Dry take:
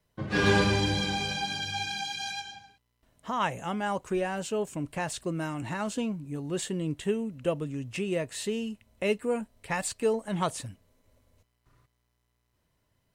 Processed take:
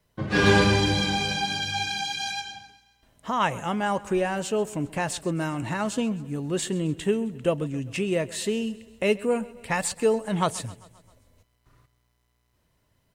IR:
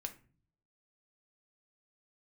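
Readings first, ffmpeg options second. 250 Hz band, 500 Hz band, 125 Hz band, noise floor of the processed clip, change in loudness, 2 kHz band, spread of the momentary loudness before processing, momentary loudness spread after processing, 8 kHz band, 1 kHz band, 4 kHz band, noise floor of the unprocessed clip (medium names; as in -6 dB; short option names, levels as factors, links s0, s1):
+4.5 dB, +4.5 dB, +4.5 dB, -70 dBFS, +4.5 dB, +4.5 dB, 8 LU, 8 LU, +4.5 dB, +4.5 dB, +4.5 dB, -76 dBFS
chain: -af "aecho=1:1:132|264|396|528|660:0.1|0.057|0.0325|0.0185|0.0106,volume=1.68"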